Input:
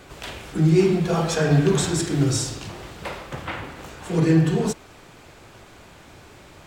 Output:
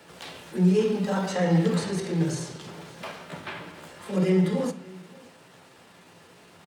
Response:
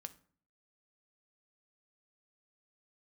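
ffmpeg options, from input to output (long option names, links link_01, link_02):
-filter_complex "[0:a]highpass=130,acrossover=split=180|1100|5400[link_01][link_02][link_03][link_04];[link_04]acompressor=threshold=-46dB:ratio=4[link_05];[link_01][link_02][link_03][link_05]amix=inputs=4:normalize=0,asetrate=50951,aresample=44100,atempo=0.865537,aecho=1:1:576:0.0708[link_06];[1:a]atrim=start_sample=2205[link_07];[link_06][link_07]afir=irnorm=-1:irlink=0"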